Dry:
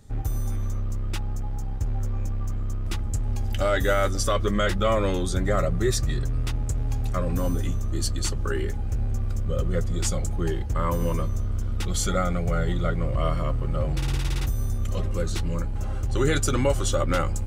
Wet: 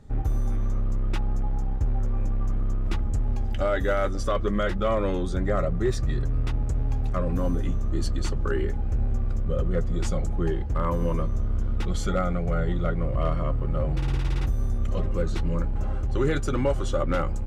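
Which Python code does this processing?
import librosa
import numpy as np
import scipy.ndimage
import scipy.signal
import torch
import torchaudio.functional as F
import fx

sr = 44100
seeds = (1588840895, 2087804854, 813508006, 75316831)

p1 = fx.lowpass(x, sr, hz=1600.0, slope=6)
p2 = fx.peak_eq(p1, sr, hz=100.0, db=-5.5, octaves=0.37)
p3 = fx.rider(p2, sr, range_db=10, speed_s=0.5)
p4 = p2 + F.gain(torch.from_numpy(p3), 1.5).numpy()
p5 = np.clip(p4, -10.0 ** (-9.0 / 20.0), 10.0 ** (-9.0 / 20.0))
y = F.gain(torch.from_numpy(p5), -6.0).numpy()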